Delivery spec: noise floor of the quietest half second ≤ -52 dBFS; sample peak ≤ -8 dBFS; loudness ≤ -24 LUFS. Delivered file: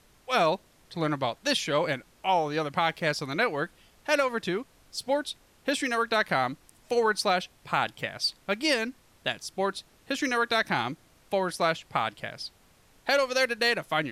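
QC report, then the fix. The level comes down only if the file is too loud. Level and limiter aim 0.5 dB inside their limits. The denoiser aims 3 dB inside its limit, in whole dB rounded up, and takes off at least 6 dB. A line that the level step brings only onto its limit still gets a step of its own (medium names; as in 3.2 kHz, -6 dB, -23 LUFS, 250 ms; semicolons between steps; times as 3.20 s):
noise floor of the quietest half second -60 dBFS: pass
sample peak -13.0 dBFS: pass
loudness -28.0 LUFS: pass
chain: none needed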